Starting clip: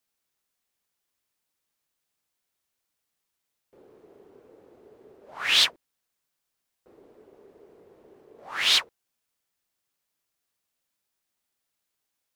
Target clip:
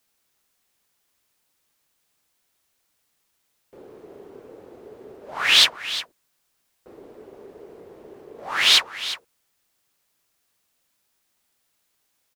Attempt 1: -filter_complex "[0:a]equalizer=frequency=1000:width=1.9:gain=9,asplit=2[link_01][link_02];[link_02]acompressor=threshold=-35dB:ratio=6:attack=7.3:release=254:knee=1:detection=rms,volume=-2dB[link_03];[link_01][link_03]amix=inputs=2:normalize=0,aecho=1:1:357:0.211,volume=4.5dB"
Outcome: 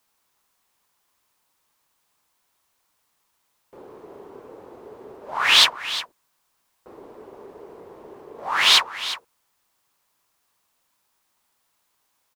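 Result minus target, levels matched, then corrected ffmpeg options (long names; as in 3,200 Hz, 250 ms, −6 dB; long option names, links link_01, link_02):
1,000 Hz band +5.5 dB
-filter_complex "[0:a]asplit=2[link_01][link_02];[link_02]acompressor=threshold=-35dB:ratio=6:attack=7.3:release=254:knee=1:detection=rms,volume=-2dB[link_03];[link_01][link_03]amix=inputs=2:normalize=0,aecho=1:1:357:0.211,volume=4.5dB"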